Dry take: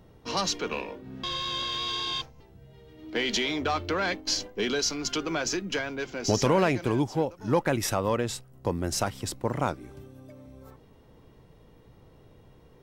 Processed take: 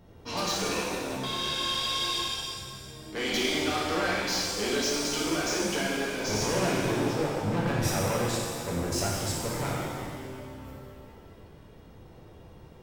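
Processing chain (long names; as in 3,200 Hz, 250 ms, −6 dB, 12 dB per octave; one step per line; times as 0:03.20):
0:07.33–0:07.85: bass and treble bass +9 dB, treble −5 dB
soft clipping −28 dBFS, distortion −6 dB
reverb with rising layers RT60 2 s, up +7 semitones, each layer −8 dB, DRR −5 dB
level −2 dB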